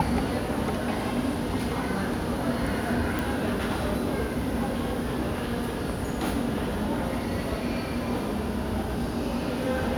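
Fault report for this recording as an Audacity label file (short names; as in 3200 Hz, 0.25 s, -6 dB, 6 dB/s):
3.190000	3.190000	pop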